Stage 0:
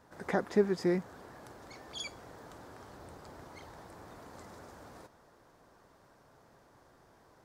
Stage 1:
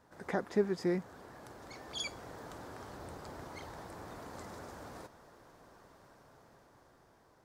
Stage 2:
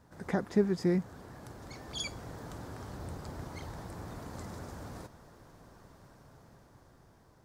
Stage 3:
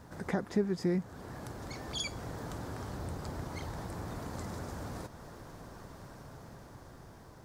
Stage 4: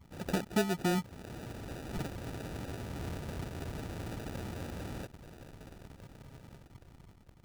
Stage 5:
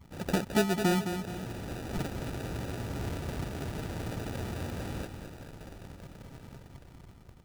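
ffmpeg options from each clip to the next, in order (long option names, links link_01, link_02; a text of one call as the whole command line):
ffmpeg -i in.wav -af "dynaudnorm=framelen=480:gausssize=7:maxgain=7dB,volume=-3.5dB" out.wav
ffmpeg -i in.wav -af "bass=frequency=250:gain=10,treble=frequency=4000:gain=3" out.wav
ffmpeg -i in.wav -af "acompressor=threshold=-57dB:ratio=1.5,volume=9dB" out.wav
ffmpeg -i in.wav -af "anlmdn=0.0158,acrusher=samples=41:mix=1:aa=0.000001" out.wav
ffmpeg -i in.wav -af "aecho=1:1:214|428|642|856:0.398|0.155|0.0606|0.0236,volume=3.5dB" out.wav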